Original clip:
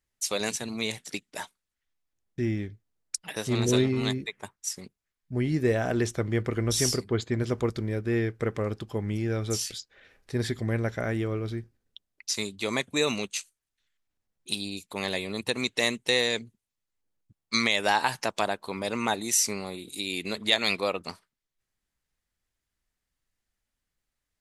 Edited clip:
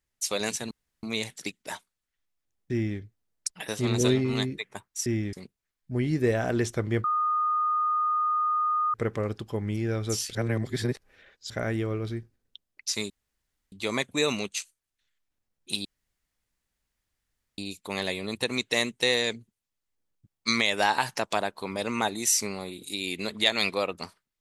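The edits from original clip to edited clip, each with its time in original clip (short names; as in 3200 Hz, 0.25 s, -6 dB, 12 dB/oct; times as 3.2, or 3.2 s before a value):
0.71 insert room tone 0.32 s
2.4–2.67 copy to 4.74
6.45–8.35 bleep 1230 Hz -22.5 dBFS
9.76–10.91 reverse
12.51 insert room tone 0.62 s
14.64 insert room tone 1.73 s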